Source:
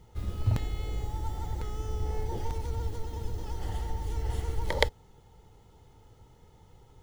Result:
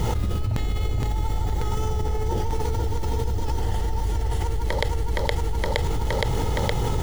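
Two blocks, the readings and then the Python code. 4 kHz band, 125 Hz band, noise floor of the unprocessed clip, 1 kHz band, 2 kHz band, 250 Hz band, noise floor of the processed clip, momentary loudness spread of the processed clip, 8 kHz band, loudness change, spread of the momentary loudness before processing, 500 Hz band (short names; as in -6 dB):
+7.0 dB, +9.0 dB, -58 dBFS, +10.5 dB, +6.5 dB, +11.5 dB, -25 dBFS, 2 LU, +11.0 dB, +7.5 dB, 8 LU, +9.5 dB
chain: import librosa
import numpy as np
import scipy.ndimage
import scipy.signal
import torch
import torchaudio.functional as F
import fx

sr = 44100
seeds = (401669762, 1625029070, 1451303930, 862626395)

p1 = x + fx.echo_feedback(x, sr, ms=467, feedback_pct=44, wet_db=-6.0, dry=0)
p2 = fx.env_flatten(p1, sr, amount_pct=100)
y = p2 * librosa.db_to_amplitude(-2.5)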